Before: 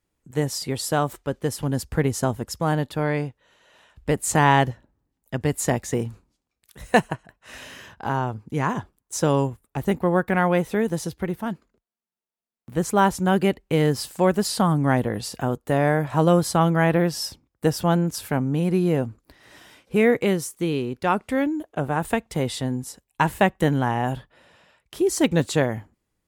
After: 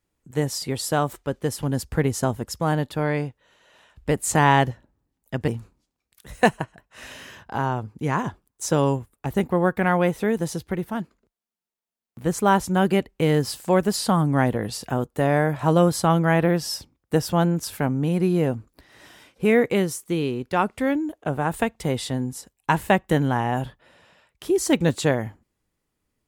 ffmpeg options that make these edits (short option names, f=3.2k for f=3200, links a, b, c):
-filter_complex "[0:a]asplit=2[a][b];[a]atrim=end=5.482[c];[b]atrim=start=5.988[d];[c][d]acrossfade=d=0.004:c1=hsin:c2=hsin"